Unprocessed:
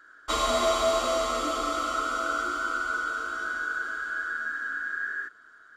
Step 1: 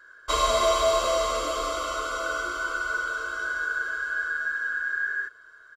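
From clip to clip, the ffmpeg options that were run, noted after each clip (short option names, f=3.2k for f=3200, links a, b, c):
-af "aecho=1:1:1.9:0.72"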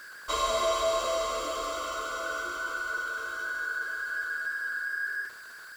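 -af "aeval=exprs='val(0)+0.5*0.0141*sgn(val(0))':c=same,lowshelf=f=77:g=-7.5,volume=-5.5dB"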